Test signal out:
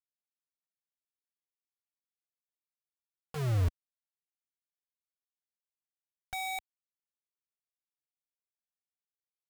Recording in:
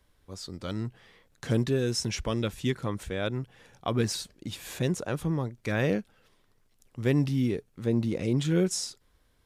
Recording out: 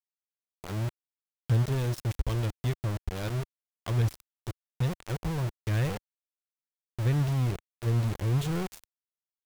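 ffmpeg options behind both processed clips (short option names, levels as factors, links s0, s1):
-filter_complex "[0:a]lowshelf=f=170:t=q:w=1.5:g=11.5,asplit=2[s0][s1];[s1]aecho=0:1:143:0.1[s2];[s0][s2]amix=inputs=2:normalize=0,aeval=exprs='val(0)*gte(abs(val(0)),0.075)':c=same,asubboost=boost=2.5:cutoff=85,volume=0.398"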